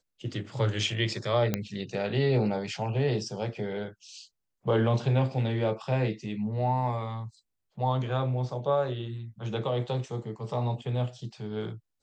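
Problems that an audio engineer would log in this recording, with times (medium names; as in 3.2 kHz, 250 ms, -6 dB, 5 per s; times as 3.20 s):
1.54 s: pop -12 dBFS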